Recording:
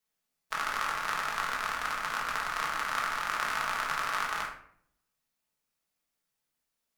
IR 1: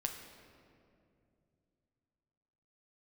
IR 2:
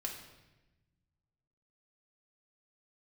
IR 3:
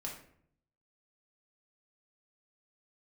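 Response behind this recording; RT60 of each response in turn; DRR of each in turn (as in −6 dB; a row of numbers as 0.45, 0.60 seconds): 3; 2.5, 1.1, 0.65 seconds; 3.0, −0.5, −2.5 decibels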